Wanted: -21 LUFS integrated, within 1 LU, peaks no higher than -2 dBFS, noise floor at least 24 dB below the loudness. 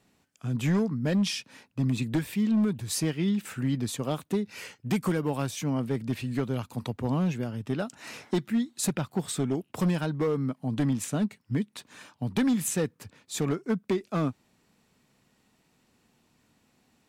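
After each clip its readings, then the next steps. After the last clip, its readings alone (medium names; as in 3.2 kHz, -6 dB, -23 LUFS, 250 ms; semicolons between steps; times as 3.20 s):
clipped samples 1.7%; clipping level -20.0 dBFS; loudness -29.5 LUFS; peak level -20.0 dBFS; loudness target -21.0 LUFS
-> clip repair -20 dBFS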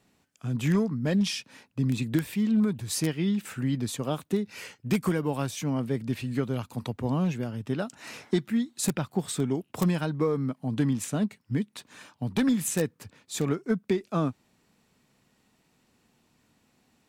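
clipped samples 0.0%; loudness -29.0 LUFS; peak level -11.0 dBFS; loudness target -21.0 LUFS
-> trim +8 dB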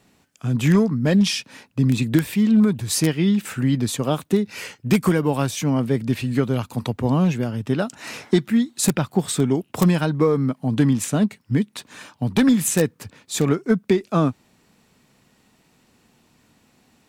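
loudness -21.0 LUFS; peak level -3.0 dBFS; noise floor -62 dBFS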